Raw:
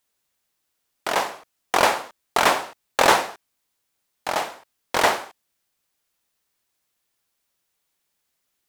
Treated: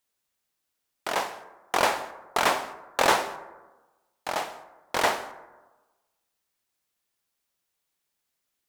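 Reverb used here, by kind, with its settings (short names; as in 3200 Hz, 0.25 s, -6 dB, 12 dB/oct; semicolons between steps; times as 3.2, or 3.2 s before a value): plate-style reverb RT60 1.2 s, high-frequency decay 0.3×, pre-delay 0.11 s, DRR 16.5 dB; gain -5 dB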